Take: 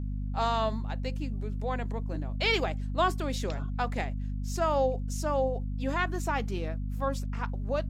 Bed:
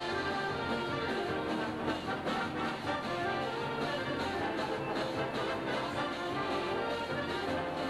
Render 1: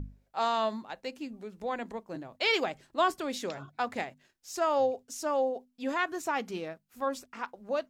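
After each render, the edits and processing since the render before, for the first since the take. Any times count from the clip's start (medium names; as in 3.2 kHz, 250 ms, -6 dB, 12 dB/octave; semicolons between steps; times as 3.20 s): hum notches 50/100/150/200/250 Hz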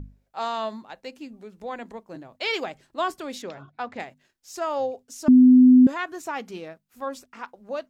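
3.42–4.00 s: distance through air 120 m; 5.28–5.87 s: bleep 253 Hz -9 dBFS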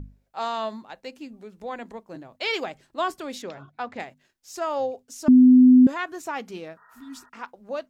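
6.80–7.26 s: spectral replace 420–1900 Hz after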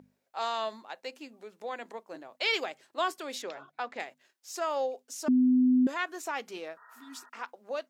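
high-pass 430 Hz 12 dB/octave; dynamic bell 860 Hz, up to -4 dB, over -38 dBFS, Q 0.78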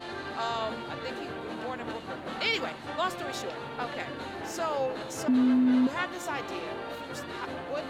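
add bed -3.5 dB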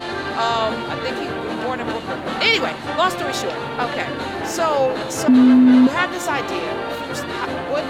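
trim +12 dB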